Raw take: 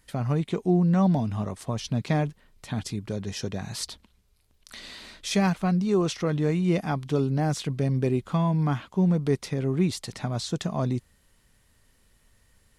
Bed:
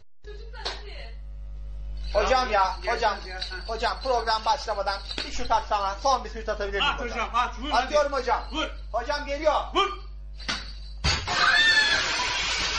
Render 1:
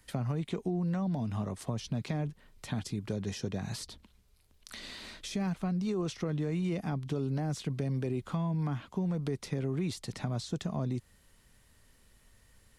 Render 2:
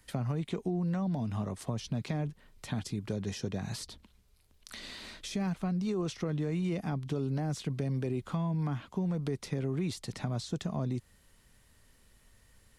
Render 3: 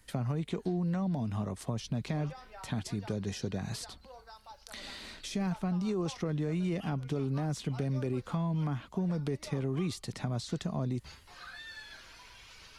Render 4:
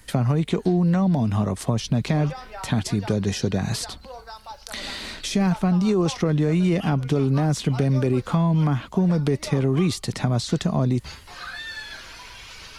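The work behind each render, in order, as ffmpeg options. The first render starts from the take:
-filter_complex "[0:a]alimiter=limit=-19dB:level=0:latency=1:release=32,acrossover=split=85|440[a][b][c];[a]acompressor=threshold=-50dB:ratio=4[d];[b]acompressor=threshold=-32dB:ratio=4[e];[c]acompressor=threshold=-42dB:ratio=4[f];[d][e][f]amix=inputs=3:normalize=0"
-af anull
-filter_complex "[1:a]volume=-27.5dB[a];[0:a][a]amix=inputs=2:normalize=0"
-af "volume=12dB"

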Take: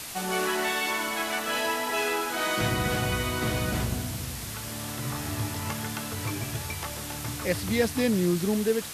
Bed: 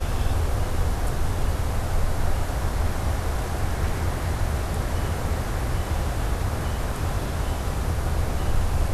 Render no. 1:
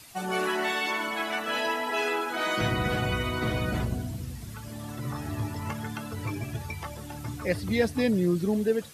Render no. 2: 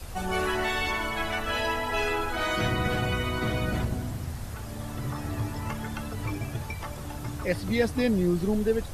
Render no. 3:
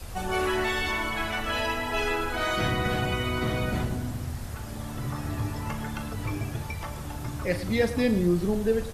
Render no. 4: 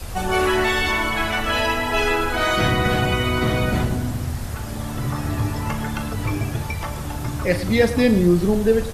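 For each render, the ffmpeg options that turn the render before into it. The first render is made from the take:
-af "afftdn=nr=13:nf=-36"
-filter_complex "[1:a]volume=-14.5dB[a];[0:a][a]amix=inputs=2:normalize=0"
-filter_complex "[0:a]asplit=2[a][b];[b]adelay=40,volume=-11dB[c];[a][c]amix=inputs=2:normalize=0,aecho=1:1:110:0.2"
-af "volume=7.5dB"

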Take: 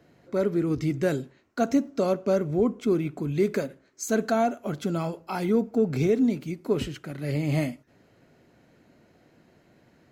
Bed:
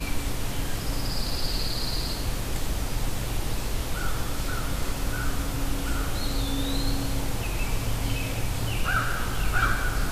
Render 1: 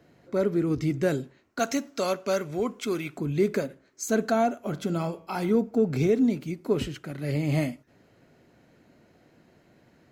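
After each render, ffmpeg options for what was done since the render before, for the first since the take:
-filter_complex "[0:a]asettb=1/sr,asplit=3[a][b][c];[a]atrim=end=1.594[d];[b]atrim=start=1.59:end=3.18,asetpts=PTS-STARTPTS,afade=t=in:d=0.004:c=qsin,afade=t=out:st=1.586:d=0.004:c=qsin,tiltshelf=f=780:g=-8.5[e];[c]atrim=start=3.176[f];[d][e]acrossfade=d=0.004:c1=hsin:c2=qsin[g];[g][f]acrossfade=d=0.004:c1=qsin:c2=hsin,asettb=1/sr,asplit=3[h][i][j];[h]atrim=end=4.644[k];[i]atrim=start=4.64:end=5.55,asetpts=PTS-STARTPTS,afade=t=in:d=0.004:c=qsin,afade=t=out:st=0.906:d=0.004:c=qsin,bandreject=f=94.17:t=h:w=4,bandreject=f=188.34:t=h:w=4,bandreject=f=282.51:t=h:w=4,bandreject=f=376.68:t=h:w=4,bandreject=f=470.85:t=h:w=4,bandreject=f=565.02:t=h:w=4,bandreject=f=659.19:t=h:w=4,bandreject=f=753.36:t=h:w=4,bandreject=f=847.53:t=h:w=4,bandreject=f=941.7:t=h:w=4,bandreject=f=1.03587k:t=h:w=4,bandreject=f=1.13004k:t=h:w=4,bandreject=f=1.22421k:t=h:w=4,bandreject=f=1.31838k:t=h:w=4,bandreject=f=1.41255k:t=h:w=4,bandreject=f=1.50672k:t=h:w=4,bandreject=f=1.60089k:t=h:w=4,bandreject=f=1.69506k:t=h:w=4,bandreject=f=1.78923k:t=h:w=4,bandreject=f=1.8834k:t=h:w=4,bandreject=f=1.97757k:t=h:w=4,bandreject=f=2.07174k:t=h:w=4,bandreject=f=2.16591k:t=h:w=4,bandreject=f=2.26008k:t=h:w=4,bandreject=f=2.35425k:t=h:w=4,bandreject=f=2.44842k:t=h:w=4,bandreject=f=2.54259k:t=h:w=4,bandreject=f=2.63676k:t=h:w=4,bandreject=f=2.73093k:t=h:w=4,bandreject=f=2.8251k:t=h:w=4,bandreject=f=2.91927k:t=h:w=4,bandreject=f=3.01344k:t=h:w=4,bandreject=f=3.10761k:t=h:w=4,bandreject=f=3.20178k:t=h:w=4,bandreject=f=3.29595k:t=h:w=4[l];[j]atrim=start=5.546[m];[k][l]acrossfade=d=0.004:c1=hsin:c2=qsin[n];[n][m]acrossfade=d=0.004:c1=qsin:c2=hsin"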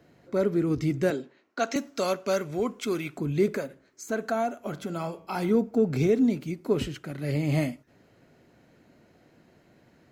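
-filter_complex "[0:a]asettb=1/sr,asplit=3[a][b][c];[a]atrim=end=1.104[d];[b]atrim=start=1.1:end=1.76,asetpts=PTS-STARTPTS,afade=t=in:d=0.004:c=qsin,afade=t=out:st=0.656:d=0.004:c=qsin,acrossover=split=210 6200:gain=0.0891 1 0.158[e][f][g];[e][f][g]amix=inputs=3:normalize=0[h];[c]atrim=start=1.756[i];[d][h]acrossfade=d=0.004:c1=hsin:c2=qsin[j];[j][i]acrossfade=d=0.004:c1=qsin:c2=hsin,asettb=1/sr,asplit=3[k][l][m];[k]atrim=end=3.484[n];[l]atrim=start=3.48:end=5.25,asetpts=PTS-STARTPTS,afade=t=in:d=0.004:c=qsin,afade=t=out:st=1.766:d=0.004:c=qsin,acrossover=split=530|2400|7000[o][p][q][r];[o]acompressor=threshold=-34dB:ratio=3[s];[p]acompressor=threshold=-26dB:ratio=3[t];[q]acompressor=threshold=-51dB:ratio=3[u];[r]acompressor=threshold=-49dB:ratio=3[v];[s][t][u][v]amix=inputs=4:normalize=0[w];[m]atrim=start=5.246[x];[n][w]acrossfade=d=0.004:c1=hsin:c2=qsin[y];[y][x]acrossfade=d=0.004:c1=qsin:c2=hsin"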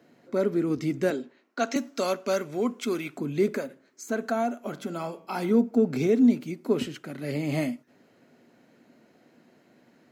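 -af "highpass=190,equalizer=f=240:t=o:w=0.22:g=7"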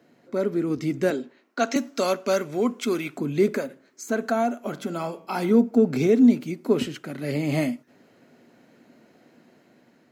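-af "dynaudnorm=f=370:g=5:m=3.5dB"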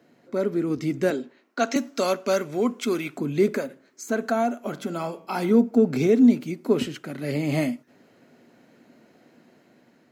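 -af anull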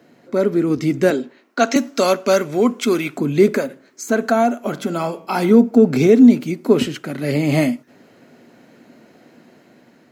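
-af "volume=7.5dB,alimiter=limit=-2dB:level=0:latency=1"

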